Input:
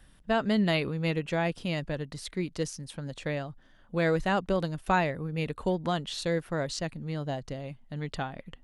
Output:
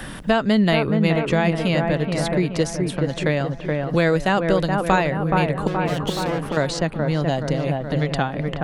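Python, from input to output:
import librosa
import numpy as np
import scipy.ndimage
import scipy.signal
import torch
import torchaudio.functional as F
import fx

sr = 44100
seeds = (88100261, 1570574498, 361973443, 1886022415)

y = fx.tube_stage(x, sr, drive_db=38.0, bias=0.7, at=(5.67, 6.57))
y = fx.echo_wet_lowpass(y, sr, ms=424, feedback_pct=49, hz=1700.0, wet_db=-5.0)
y = fx.band_squash(y, sr, depth_pct=70)
y = y * 10.0 ** (8.5 / 20.0)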